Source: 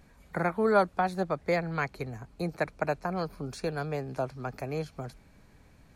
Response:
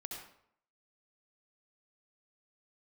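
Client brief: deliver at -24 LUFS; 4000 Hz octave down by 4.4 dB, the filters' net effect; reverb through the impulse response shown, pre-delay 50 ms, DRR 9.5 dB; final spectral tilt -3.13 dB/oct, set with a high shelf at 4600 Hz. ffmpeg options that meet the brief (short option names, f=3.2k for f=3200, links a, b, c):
-filter_complex "[0:a]equalizer=f=4k:t=o:g=-8,highshelf=f=4.6k:g=6,asplit=2[a][b];[1:a]atrim=start_sample=2205,adelay=50[c];[b][c]afir=irnorm=-1:irlink=0,volume=-7.5dB[d];[a][d]amix=inputs=2:normalize=0,volume=7dB"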